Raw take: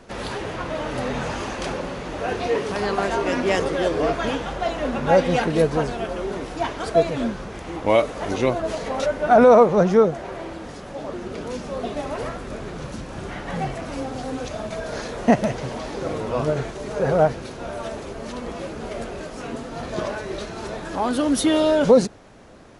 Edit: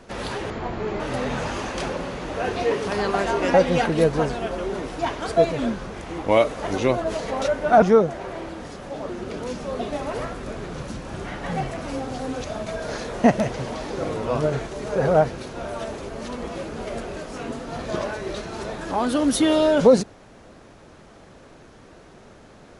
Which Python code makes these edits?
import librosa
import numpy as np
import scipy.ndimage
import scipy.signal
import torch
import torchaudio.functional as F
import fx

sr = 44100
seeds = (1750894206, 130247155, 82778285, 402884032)

y = fx.edit(x, sr, fx.speed_span(start_s=0.5, length_s=0.34, speed=0.68),
    fx.cut(start_s=3.38, length_s=1.74),
    fx.cut(start_s=9.4, length_s=0.46), tone=tone)